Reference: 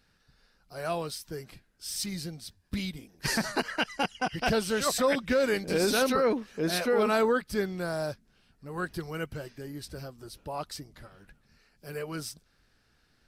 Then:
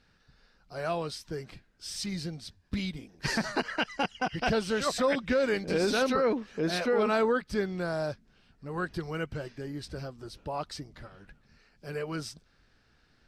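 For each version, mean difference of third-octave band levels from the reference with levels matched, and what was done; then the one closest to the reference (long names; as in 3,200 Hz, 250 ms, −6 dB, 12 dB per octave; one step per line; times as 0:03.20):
2.5 dB: parametric band 9,900 Hz −2.5 dB 0.35 octaves
in parallel at −2 dB: downward compressor, threshold −34 dBFS, peak gain reduction 13 dB
on the sum: high-frequency loss of the air 61 metres
level −2.5 dB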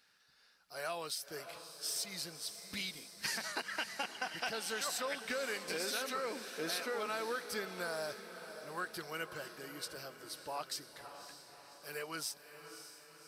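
9.5 dB: high-pass filter 1,200 Hz 6 dB per octave
downward compressor, threshold −37 dBFS, peak gain reduction 11.5 dB
on a send: feedback delay with all-pass diffusion 576 ms, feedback 56%, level −10.5 dB
on the sum: level +1.5 dB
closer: first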